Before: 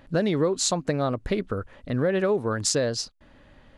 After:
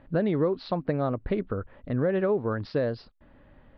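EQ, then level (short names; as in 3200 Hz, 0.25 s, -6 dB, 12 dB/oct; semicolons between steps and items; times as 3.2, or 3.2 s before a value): steep low-pass 5000 Hz 72 dB/oct; air absorption 210 m; high shelf 3200 Hz -10.5 dB; -1.0 dB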